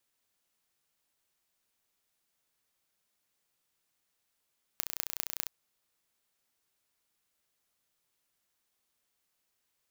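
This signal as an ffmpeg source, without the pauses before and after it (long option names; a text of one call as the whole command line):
ffmpeg -f lavfi -i "aevalsrc='0.668*eq(mod(n,1470),0)*(0.5+0.5*eq(mod(n,8820),0))':duration=0.67:sample_rate=44100" out.wav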